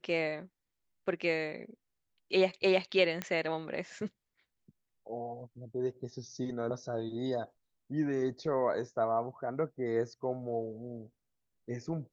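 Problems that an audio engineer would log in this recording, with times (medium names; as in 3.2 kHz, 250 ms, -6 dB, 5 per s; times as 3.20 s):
3.22 s: pop -18 dBFS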